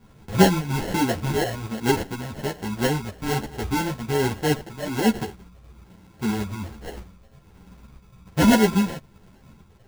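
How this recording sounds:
phaser sweep stages 8, 1.2 Hz, lowest notch 360–2,700 Hz
aliases and images of a low sample rate 1,200 Hz, jitter 0%
tremolo saw up 8.4 Hz, depth 40%
a shimmering, thickened sound

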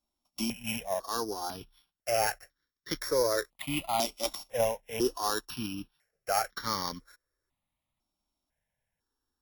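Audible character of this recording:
a buzz of ramps at a fixed pitch in blocks of 8 samples
notches that jump at a steady rate 2 Hz 470–2,600 Hz

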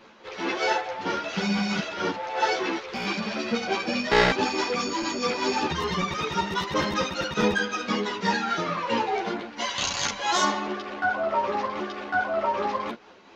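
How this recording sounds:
tremolo triangle 4.6 Hz, depth 35%
a shimmering, thickened sound

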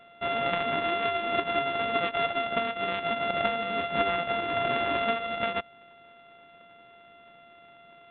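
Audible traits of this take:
a buzz of ramps at a fixed pitch in blocks of 64 samples
mu-law

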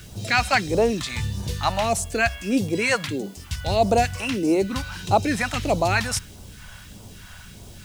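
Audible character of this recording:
phaser sweep stages 2, 1.6 Hz, lowest notch 340–1,700 Hz
a quantiser's noise floor 10 bits, dither triangular

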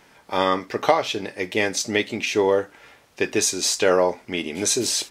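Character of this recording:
background noise floor −55 dBFS
spectral slope −2.0 dB per octave

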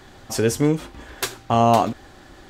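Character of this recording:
background noise floor −47 dBFS
spectral slope −5.5 dB per octave

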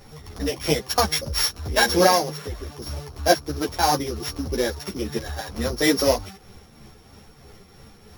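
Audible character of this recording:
a buzz of ramps at a fixed pitch in blocks of 8 samples
tremolo triangle 3.1 Hz, depth 45%
a shimmering, thickened sound

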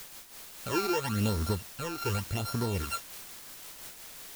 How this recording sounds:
a buzz of ramps at a fixed pitch in blocks of 32 samples
phaser sweep stages 12, 0.88 Hz, lowest notch 170–2,900 Hz
a quantiser's noise floor 8 bits, dither triangular
amplitude modulation by smooth noise

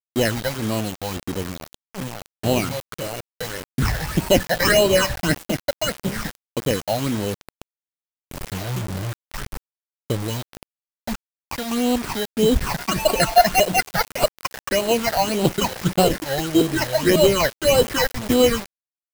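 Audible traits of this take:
aliases and images of a low sample rate 3,500 Hz, jitter 0%
phaser sweep stages 8, 1.7 Hz, lowest notch 320–1,900 Hz
a quantiser's noise floor 6 bits, dither none

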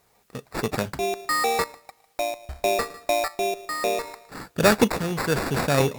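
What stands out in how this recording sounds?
aliases and images of a low sample rate 3,100 Hz, jitter 0%
tremolo saw up 0.61 Hz, depth 70%
a quantiser's noise floor 12 bits, dither triangular
Ogg Vorbis

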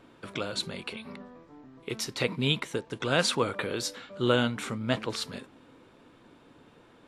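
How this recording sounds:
background noise floor −57 dBFS
spectral slope −4.0 dB per octave

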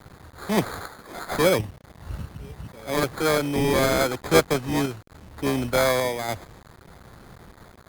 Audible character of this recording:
aliases and images of a low sample rate 2,800 Hz, jitter 0%
sample-and-hold tremolo
a quantiser's noise floor 8 bits, dither none
Opus

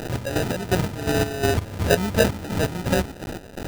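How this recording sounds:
a quantiser's noise floor 6 bits, dither triangular
chopped level 2.8 Hz, depth 65%, duty 45%
aliases and images of a low sample rate 1,100 Hz, jitter 0%

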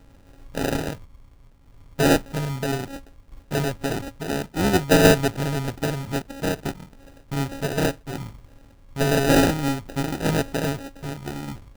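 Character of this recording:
a buzz of ramps at a fixed pitch in blocks of 32 samples
tremolo saw down 0.61 Hz, depth 45%
aliases and images of a low sample rate 1,100 Hz, jitter 0%

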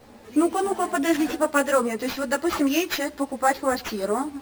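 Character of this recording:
aliases and images of a low sample rate 9,000 Hz, jitter 0%
a shimmering, thickened sound

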